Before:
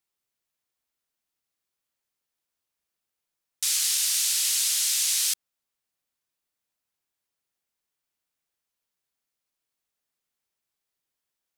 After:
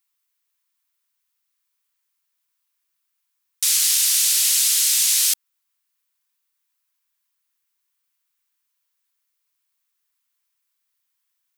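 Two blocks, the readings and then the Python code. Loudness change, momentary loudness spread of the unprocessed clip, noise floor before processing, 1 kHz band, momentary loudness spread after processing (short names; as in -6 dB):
+6.5 dB, 5 LU, -85 dBFS, n/a, 5 LU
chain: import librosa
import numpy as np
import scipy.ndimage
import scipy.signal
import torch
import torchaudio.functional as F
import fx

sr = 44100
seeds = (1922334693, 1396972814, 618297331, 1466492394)

y = scipy.signal.sosfilt(scipy.signal.ellip(4, 1.0, 40, 950.0, 'highpass', fs=sr, output='sos'), x)
y = fx.high_shelf(y, sr, hz=12000.0, db=9.0)
y = y * librosa.db_to_amplitude(5.0)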